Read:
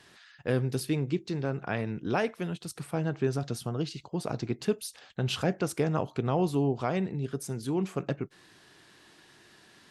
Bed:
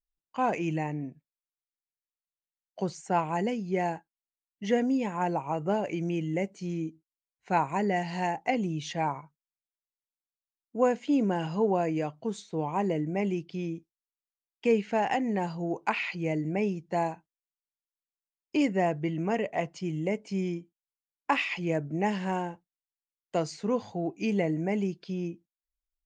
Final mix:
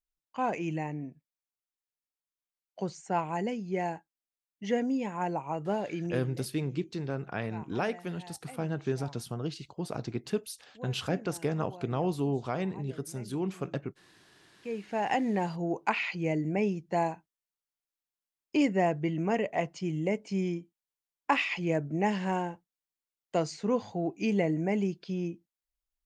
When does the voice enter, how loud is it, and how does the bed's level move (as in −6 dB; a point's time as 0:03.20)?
5.65 s, −3.0 dB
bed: 0:06.09 −3 dB
0:06.39 −20.5 dB
0:14.44 −20.5 dB
0:15.12 0 dB